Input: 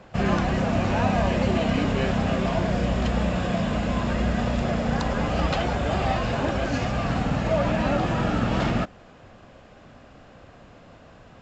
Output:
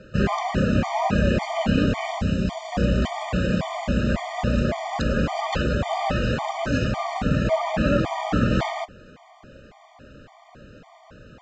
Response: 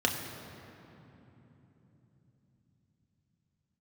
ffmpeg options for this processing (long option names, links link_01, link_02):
-filter_complex "[0:a]asettb=1/sr,asplit=3[link_01][link_02][link_03];[link_01]atrim=end=2.184[link_04];[link_02]atrim=start=2.18:end=2.72,asetpts=PTS-STARTPTS,afade=type=in:duration=0.004:curve=qsin,afade=type=out:start_time=0.536:duration=0.004:curve=qsin,acrossover=split=260|3000[link_05][link_06][link_07];[link_06]acompressor=threshold=-34dB:ratio=6[link_08];[link_05][link_08][link_07]amix=inputs=3:normalize=0[link_09];[link_03]atrim=start=2.716[link_10];[link_04][link_09]acrossfade=duration=0.004:curve1=hsin:curve2=qsin[link_11];[link_11][link_10]acrossfade=duration=0.004:curve1=qsin:curve2=hsin,afftfilt=real='re*gt(sin(2*PI*1.8*pts/sr)*(1-2*mod(floor(b*sr/1024/610),2)),0)':imag='im*gt(sin(2*PI*1.8*pts/sr)*(1-2*mod(floor(b*sr/1024/610),2)),0)':win_size=1024:overlap=0.75,volume=4dB"